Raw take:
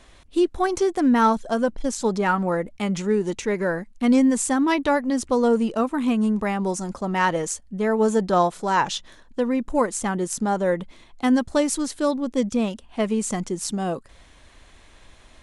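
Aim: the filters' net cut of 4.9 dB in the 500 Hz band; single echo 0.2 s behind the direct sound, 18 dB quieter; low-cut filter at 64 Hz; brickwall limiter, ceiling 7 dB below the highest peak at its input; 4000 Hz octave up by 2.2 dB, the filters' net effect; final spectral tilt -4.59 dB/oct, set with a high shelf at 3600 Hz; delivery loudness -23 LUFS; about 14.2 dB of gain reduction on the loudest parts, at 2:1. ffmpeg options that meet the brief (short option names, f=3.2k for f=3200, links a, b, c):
-af "highpass=64,equalizer=f=500:t=o:g=-6,highshelf=f=3.6k:g=-6,equalizer=f=4k:t=o:g=7,acompressor=threshold=-43dB:ratio=2,alimiter=level_in=4.5dB:limit=-24dB:level=0:latency=1,volume=-4.5dB,aecho=1:1:200:0.126,volume=15dB"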